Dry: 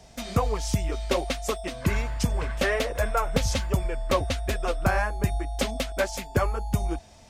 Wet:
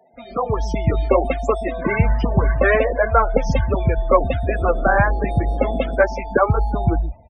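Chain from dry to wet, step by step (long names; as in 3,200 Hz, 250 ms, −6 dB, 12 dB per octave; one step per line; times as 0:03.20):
0:02.20–0:02.79: phase distortion by the signal itself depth 0.15 ms
bass and treble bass −3 dB, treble −12 dB
automatic gain control gain up to 15 dB
spectral peaks only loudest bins 32
multiband delay without the direct sound highs, lows 130 ms, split 210 Hz
0:04.45–0:05.94: noise in a band 140–590 Hz −35 dBFS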